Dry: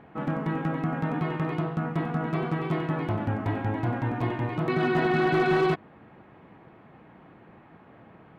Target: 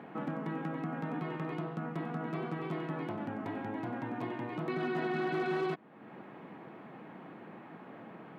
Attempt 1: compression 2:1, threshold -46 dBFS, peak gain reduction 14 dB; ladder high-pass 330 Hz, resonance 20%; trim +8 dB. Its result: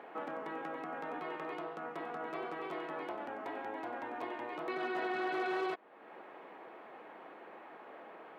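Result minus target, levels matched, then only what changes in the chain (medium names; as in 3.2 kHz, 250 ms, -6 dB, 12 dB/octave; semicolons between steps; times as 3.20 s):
125 Hz band -18.5 dB
change: ladder high-pass 140 Hz, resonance 20%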